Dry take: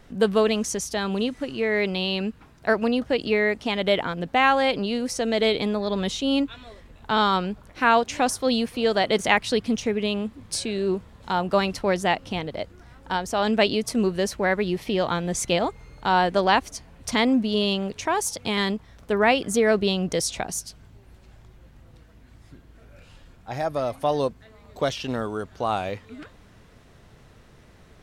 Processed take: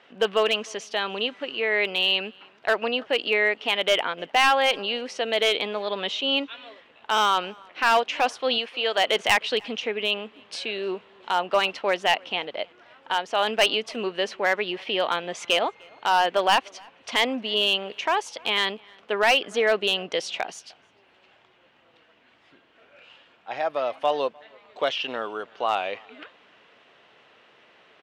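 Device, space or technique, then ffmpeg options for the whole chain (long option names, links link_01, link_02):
megaphone: -filter_complex "[0:a]asettb=1/sr,asplit=3[link_01][link_02][link_03];[link_01]atrim=end=8.584[link_04];[link_02]atrim=start=8.58:end=8.98,asetpts=PTS-STARTPTS,afade=type=in:duration=0.004:curve=qsin,afade=type=out:start_time=0.396:duration=0.004:curve=qsin,lowshelf=frequency=290:gain=-11[link_05];[link_03]atrim=start=8.976[link_06];[link_04][link_05]acrossfade=duration=0.004:curve1=hsin:curve2=qsin[link_07];[link_07][link_06]acrossfade=duration=0.004:curve1=qsin:curve2=hsin,highpass=500,lowpass=3300,equalizer=frequency=2900:width_type=o:width=0.57:gain=9,asoftclip=type=hard:threshold=-14dB,asplit=2[link_08][link_09];[link_09]adelay=303.2,volume=-27dB,highshelf=frequency=4000:gain=-6.82[link_10];[link_08][link_10]amix=inputs=2:normalize=0,volume=1.5dB"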